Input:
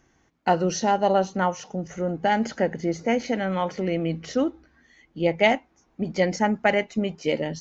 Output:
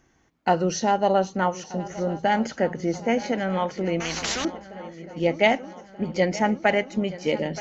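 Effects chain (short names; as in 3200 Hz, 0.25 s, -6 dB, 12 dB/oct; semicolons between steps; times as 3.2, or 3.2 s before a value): swung echo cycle 1.231 s, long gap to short 3:1, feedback 59%, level -17 dB; 4–4.45 spectral compressor 4:1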